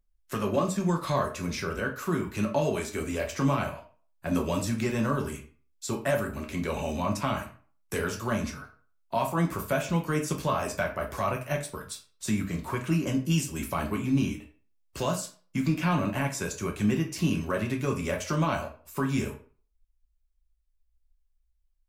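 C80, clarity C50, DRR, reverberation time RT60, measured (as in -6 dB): 15.0 dB, 10.0 dB, 1.5 dB, 0.40 s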